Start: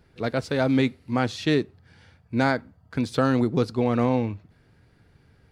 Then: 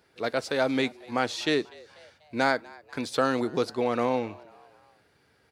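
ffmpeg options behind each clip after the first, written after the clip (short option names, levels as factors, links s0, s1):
-filter_complex "[0:a]highpass=60,bass=f=250:g=-15,treble=f=4000:g=3,asplit=4[s0][s1][s2][s3];[s1]adelay=245,afreqshift=100,volume=0.0668[s4];[s2]adelay=490,afreqshift=200,volume=0.0347[s5];[s3]adelay=735,afreqshift=300,volume=0.018[s6];[s0][s4][s5][s6]amix=inputs=4:normalize=0"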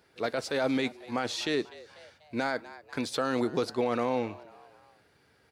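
-af "alimiter=limit=0.119:level=0:latency=1:release=14"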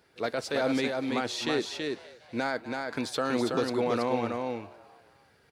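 -af "aecho=1:1:328:0.631"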